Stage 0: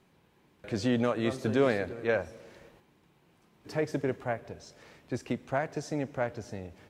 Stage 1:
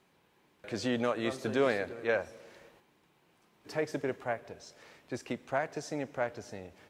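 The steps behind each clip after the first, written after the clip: bass shelf 250 Hz -10 dB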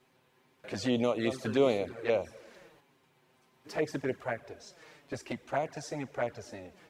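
touch-sensitive flanger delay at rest 8.1 ms, full sweep at -27 dBFS; trim +3.5 dB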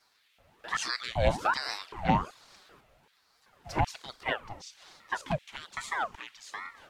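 LFO high-pass square 1.3 Hz 220–2900 Hz; ring modulator with a swept carrier 970 Hz, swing 70%, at 1.2 Hz; trim +5 dB

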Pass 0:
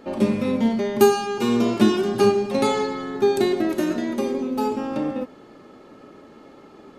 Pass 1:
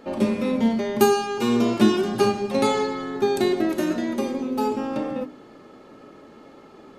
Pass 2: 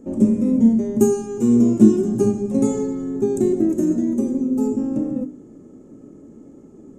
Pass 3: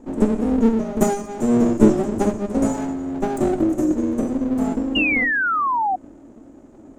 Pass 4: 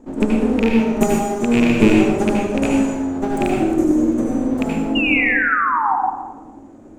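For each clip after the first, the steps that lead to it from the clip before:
hum notches 50/100/150/200/250/300/350/400 Hz
FFT filter 290 Hz 0 dB, 800 Hz -19 dB, 1.3 kHz -23 dB, 2 kHz -25 dB, 4.4 kHz -30 dB, 7.1 kHz -1 dB, 11 kHz -14 dB; trim +7 dB
comb filter that takes the minimum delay 3.3 ms; painted sound fall, 4.95–5.96 s, 730–2900 Hz -20 dBFS
rattle on loud lows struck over -17 dBFS, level -10 dBFS; reverberation RT60 1.0 s, pre-delay 67 ms, DRR -1.5 dB; trim -1 dB

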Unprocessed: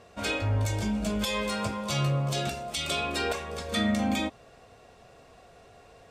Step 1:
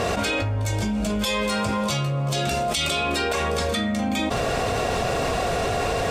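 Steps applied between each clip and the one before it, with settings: level flattener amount 100%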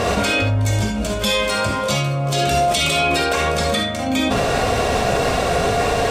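gated-style reverb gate 90 ms rising, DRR 3.5 dB; trim +4 dB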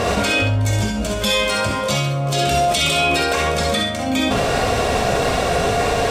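feedback echo behind a high-pass 66 ms, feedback 31%, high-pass 2.1 kHz, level -8 dB

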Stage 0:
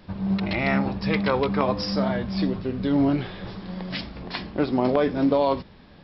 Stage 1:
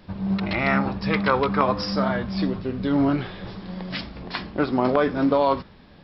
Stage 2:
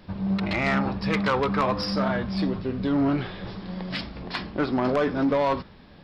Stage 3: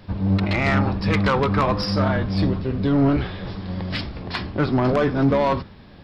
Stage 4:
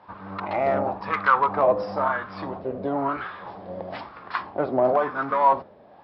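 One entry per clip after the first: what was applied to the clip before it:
dynamic bell 1.3 kHz, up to +8 dB, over -42 dBFS, Q 1.8
saturation -16.5 dBFS, distortion -14 dB
octave divider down 1 oct, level 0 dB; trim +3 dB
wah-wah 1 Hz 580–1300 Hz, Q 3.5; trim +8 dB

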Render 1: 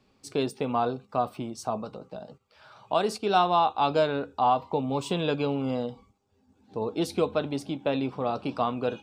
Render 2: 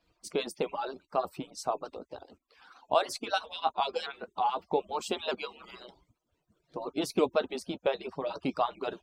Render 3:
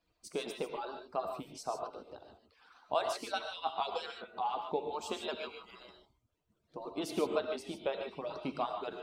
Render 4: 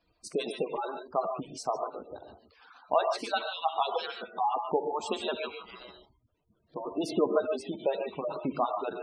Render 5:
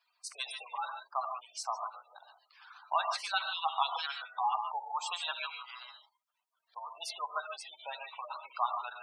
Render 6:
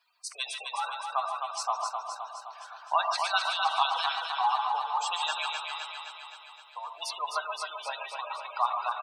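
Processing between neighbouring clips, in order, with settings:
harmonic-percussive separation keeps percussive; vibrato with a chosen wave saw up 3.2 Hz, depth 100 cents
gated-style reverb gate 170 ms rising, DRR 4 dB; trim -6.5 dB
spectral gate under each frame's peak -20 dB strong; trim +6.5 dB
steep high-pass 870 Hz 36 dB/octave; trim +1.5 dB
band-stop 2.1 kHz, Q 24; feedback delay 259 ms, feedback 60%, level -5.5 dB; trim +4.5 dB

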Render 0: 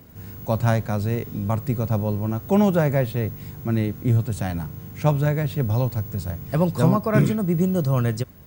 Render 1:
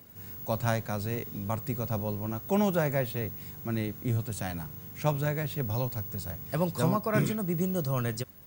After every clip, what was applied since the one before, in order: tilt EQ +1.5 dB/octave; trim -5.5 dB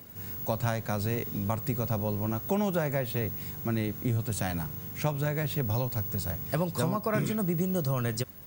compression, threshold -29 dBFS, peak gain reduction 9 dB; trim +4.5 dB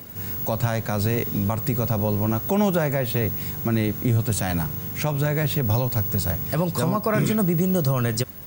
peak limiter -20 dBFS, peak gain reduction 6.5 dB; trim +8.5 dB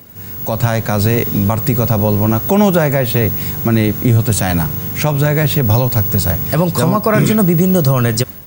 level rider gain up to 11.5 dB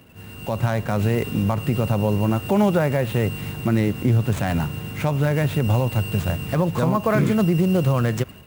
median filter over 9 samples; trim -6.5 dB

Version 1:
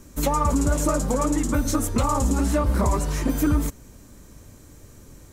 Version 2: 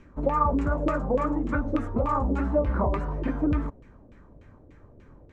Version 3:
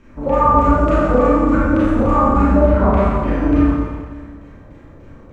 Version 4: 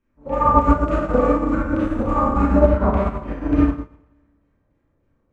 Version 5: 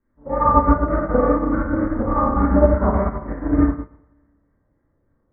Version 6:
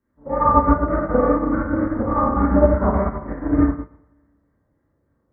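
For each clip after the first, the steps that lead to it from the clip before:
LFO low-pass saw down 3.4 Hz 450–2600 Hz; trim -5 dB
Schroeder reverb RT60 1.6 s, combs from 28 ms, DRR -9 dB; trim +2 dB
upward expansion 2.5:1, over -27 dBFS; trim +1 dB
steep low-pass 2.1 kHz 96 dB/octave
high-pass 51 Hz

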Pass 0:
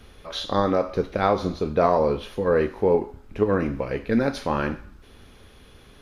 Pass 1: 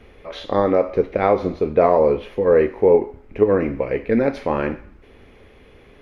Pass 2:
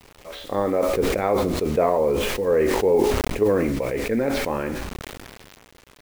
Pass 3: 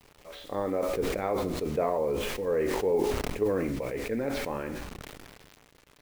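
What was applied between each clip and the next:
FFT filter 180 Hz 0 dB, 460 Hz +7 dB, 1.5 kHz -2 dB, 2.1 kHz +7 dB, 3.7 kHz -7 dB, 9.7 kHz -11 dB
bit crusher 7-bit; decay stretcher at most 26 dB/s; trim -5.5 dB
simulated room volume 2200 m³, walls furnished, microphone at 0.38 m; trim -8 dB

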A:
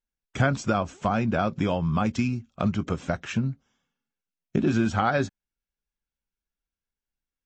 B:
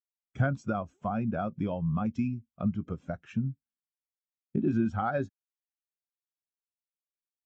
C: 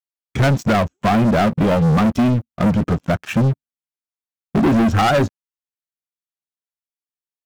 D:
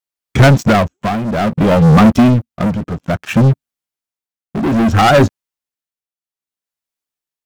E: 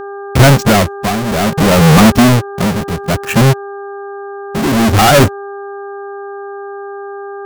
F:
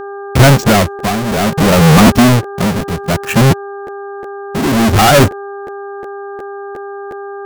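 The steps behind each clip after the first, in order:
spectral contrast expander 1.5:1; trim -6 dB
waveshaping leveller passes 5; trim +5 dB
tremolo triangle 0.61 Hz, depth 80%; trim +8.5 dB
square wave that keeps the level; mains buzz 400 Hz, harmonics 4, -26 dBFS -6 dB/octave
crackling interface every 0.36 s, samples 512, repeat, from 0.62 s

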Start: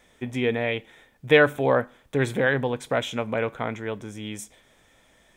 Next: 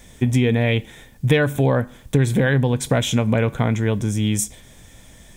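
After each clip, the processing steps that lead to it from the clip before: tone controls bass +14 dB, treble +10 dB; band-stop 1.3 kHz, Q 16; compression 6:1, threshold -20 dBFS, peak gain reduction 11 dB; trim +6.5 dB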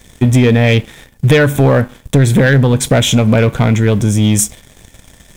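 waveshaping leveller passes 2; trim +2.5 dB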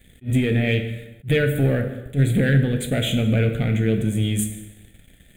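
static phaser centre 2.4 kHz, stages 4; plate-style reverb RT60 1.1 s, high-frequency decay 0.75×, pre-delay 0 ms, DRR 5.5 dB; attacks held to a fixed rise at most 330 dB/s; trim -9 dB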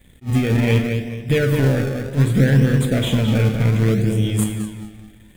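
filtered feedback delay 214 ms, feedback 39%, low-pass 4.3 kHz, level -5.5 dB; in parallel at -7.5 dB: decimation with a swept rate 30×, swing 100% 0.65 Hz; on the sum: trim -1 dB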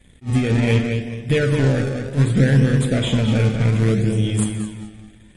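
MP3 48 kbps 48 kHz

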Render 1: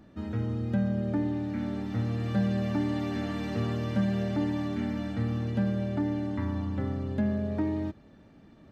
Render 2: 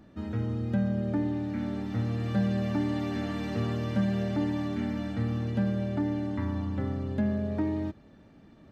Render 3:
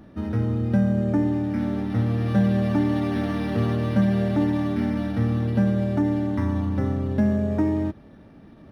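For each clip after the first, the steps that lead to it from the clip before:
no audible change
decimation joined by straight lines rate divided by 6×; trim +7 dB

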